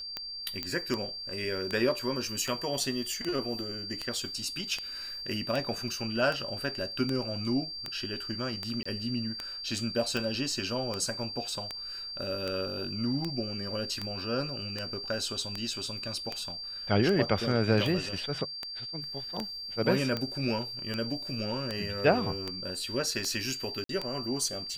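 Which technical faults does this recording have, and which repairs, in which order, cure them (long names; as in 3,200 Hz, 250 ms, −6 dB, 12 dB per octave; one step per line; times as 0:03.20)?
scratch tick 78 rpm −18 dBFS
whistle 4,700 Hz −37 dBFS
0:00.63: click −17 dBFS
0:08.83–0:08.86: drop-out 25 ms
0:23.84–0:23.89: drop-out 53 ms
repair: click removal
notch filter 4,700 Hz, Q 30
repair the gap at 0:08.83, 25 ms
repair the gap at 0:23.84, 53 ms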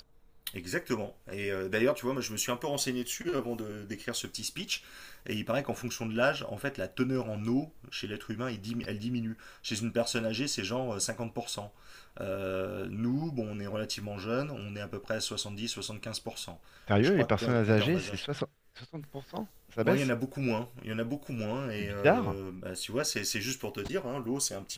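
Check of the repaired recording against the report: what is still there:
none of them is left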